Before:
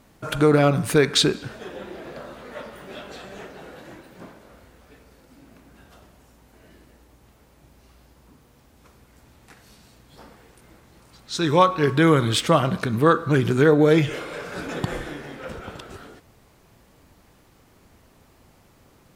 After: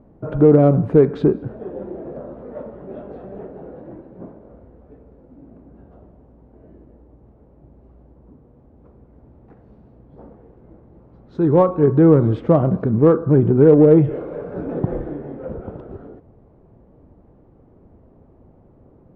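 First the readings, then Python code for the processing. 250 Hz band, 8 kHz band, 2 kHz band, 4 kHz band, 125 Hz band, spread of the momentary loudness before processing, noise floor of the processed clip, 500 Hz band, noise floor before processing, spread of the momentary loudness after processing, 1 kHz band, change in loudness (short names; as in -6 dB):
+6.0 dB, under -35 dB, -13.5 dB, under -25 dB, +5.5 dB, 21 LU, -51 dBFS, +5.5 dB, -56 dBFS, 22 LU, -4.5 dB, +4.5 dB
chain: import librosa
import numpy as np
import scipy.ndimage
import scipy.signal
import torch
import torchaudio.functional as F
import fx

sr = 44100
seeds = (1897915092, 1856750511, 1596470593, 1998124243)

p1 = scipy.signal.sosfilt(scipy.signal.cheby1(2, 1.0, 510.0, 'lowpass', fs=sr, output='sos'), x)
p2 = 10.0 ** (-20.0 / 20.0) * np.tanh(p1 / 10.0 ** (-20.0 / 20.0))
p3 = p1 + F.gain(torch.from_numpy(p2), -11.0).numpy()
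y = F.gain(torch.from_numpy(p3), 5.0).numpy()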